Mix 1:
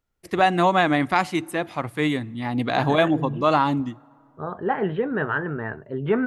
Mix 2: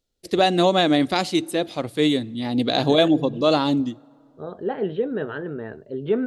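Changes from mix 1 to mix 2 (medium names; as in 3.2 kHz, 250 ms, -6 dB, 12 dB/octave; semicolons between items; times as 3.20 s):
second voice -4.5 dB; master: add graphic EQ 125/250/500/1000/2000/4000/8000 Hz -3/+3/+7/-8/-6/+11/+4 dB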